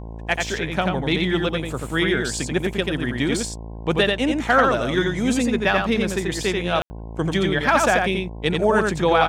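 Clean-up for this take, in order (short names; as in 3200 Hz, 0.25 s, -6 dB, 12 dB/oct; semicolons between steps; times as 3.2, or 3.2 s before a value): de-hum 55.7 Hz, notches 19; room tone fill 6.82–6.9; inverse comb 87 ms -3.5 dB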